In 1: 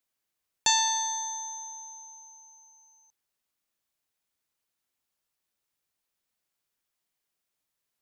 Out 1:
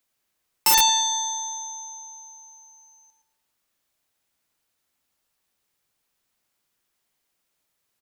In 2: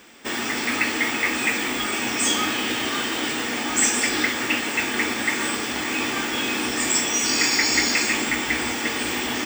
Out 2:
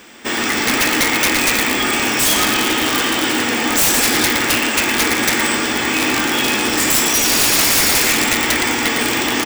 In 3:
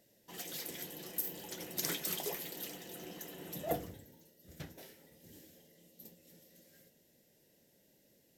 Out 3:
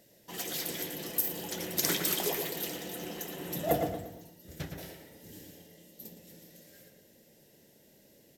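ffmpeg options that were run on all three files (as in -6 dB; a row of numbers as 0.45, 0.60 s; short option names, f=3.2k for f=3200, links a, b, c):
-filter_complex "[0:a]asplit=2[a][b];[b]adelay=115,lowpass=f=2.6k:p=1,volume=-4dB,asplit=2[c][d];[d]adelay=115,lowpass=f=2.6k:p=1,volume=0.43,asplit=2[e][f];[f]adelay=115,lowpass=f=2.6k:p=1,volume=0.43,asplit=2[g][h];[h]adelay=115,lowpass=f=2.6k:p=1,volume=0.43,asplit=2[i][j];[j]adelay=115,lowpass=f=2.6k:p=1,volume=0.43[k];[a][c][e][g][i][k]amix=inputs=6:normalize=0,aeval=exprs='(mod(5.62*val(0)+1,2)-1)/5.62':c=same,volume=7dB"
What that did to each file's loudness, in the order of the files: +7.0, +7.5, +7.5 LU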